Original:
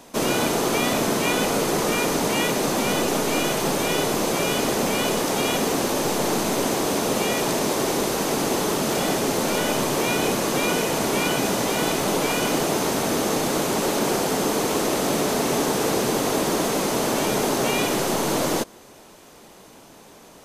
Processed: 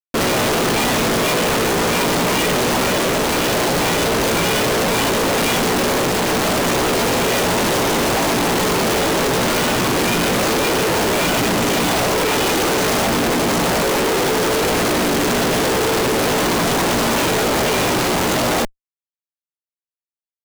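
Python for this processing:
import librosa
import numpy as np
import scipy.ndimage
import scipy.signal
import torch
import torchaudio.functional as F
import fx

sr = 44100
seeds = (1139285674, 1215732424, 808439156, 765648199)

y = fx.chorus_voices(x, sr, voices=4, hz=0.29, base_ms=17, depth_ms=1.2, mix_pct=45)
y = fx.schmitt(y, sr, flips_db=-33.0)
y = y * librosa.db_to_amplitude(8.5)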